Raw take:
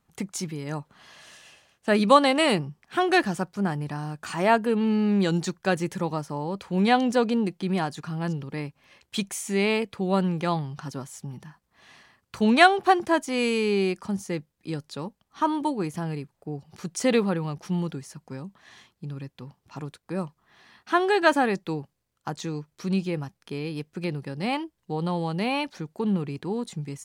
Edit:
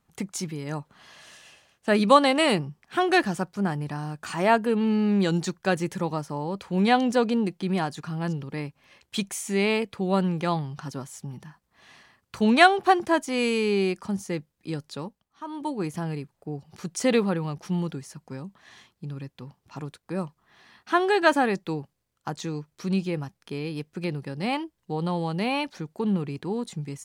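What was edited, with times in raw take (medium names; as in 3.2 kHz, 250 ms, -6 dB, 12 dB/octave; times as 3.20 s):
14.97–15.86 s: dip -14 dB, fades 0.41 s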